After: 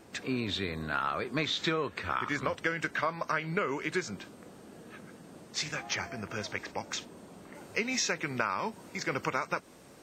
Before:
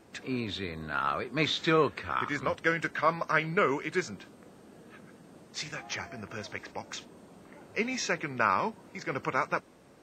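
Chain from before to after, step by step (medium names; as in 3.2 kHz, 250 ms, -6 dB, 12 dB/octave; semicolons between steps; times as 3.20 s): treble shelf 3.9 kHz +3 dB, from 7.55 s +8.5 dB; compression 10:1, threshold -29 dBFS, peak gain reduction 10.5 dB; trim +2.5 dB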